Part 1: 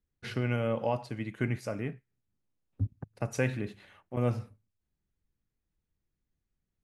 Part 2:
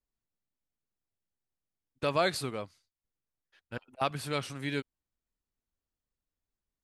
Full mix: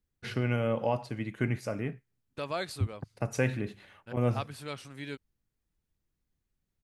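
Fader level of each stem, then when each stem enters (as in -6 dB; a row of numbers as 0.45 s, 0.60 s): +1.0 dB, -6.5 dB; 0.00 s, 0.35 s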